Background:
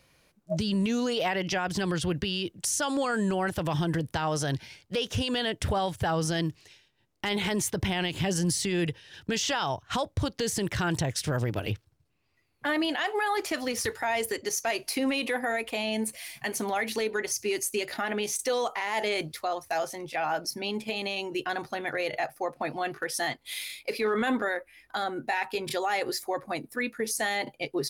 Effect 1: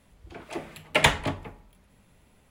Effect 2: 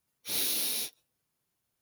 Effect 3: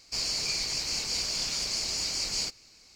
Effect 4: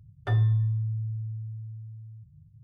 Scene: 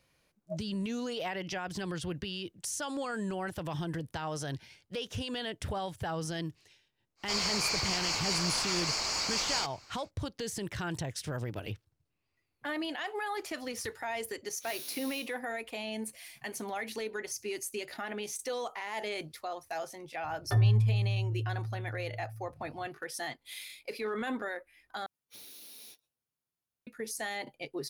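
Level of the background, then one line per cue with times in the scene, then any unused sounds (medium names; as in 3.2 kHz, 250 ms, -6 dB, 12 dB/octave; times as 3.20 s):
background -8 dB
7.16 s: add 3 -4 dB, fades 0.10 s + peaking EQ 1.1 kHz +15 dB 1.9 oct
14.35 s: add 2 -15 dB + spectral sustain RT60 0.40 s
20.24 s: add 4 -1 dB + low-pass that closes with the level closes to 1.3 kHz, closed at -22.5 dBFS
25.06 s: replace with 2 -11.5 dB + compression 12:1, threshold -34 dBFS
not used: 1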